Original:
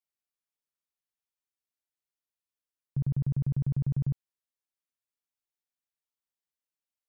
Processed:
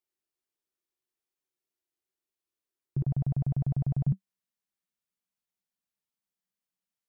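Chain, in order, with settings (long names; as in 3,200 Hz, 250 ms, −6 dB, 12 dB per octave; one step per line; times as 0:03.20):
parametric band 360 Hz +13.5 dB 0.45 octaves, from 0:03.04 710 Hz, from 0:04.07 190 Hz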